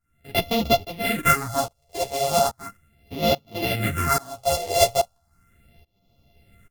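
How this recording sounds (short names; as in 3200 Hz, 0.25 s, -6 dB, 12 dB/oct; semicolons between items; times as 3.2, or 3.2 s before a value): a buzz of ramps at a fixed pitch in blocks of 64 samples; phasing stages 4, 0.37 Hz, lowest notch 230–1600 Hz; tremolo saw up 1.2 Hz, depth 95%; a shimmering, thickened sound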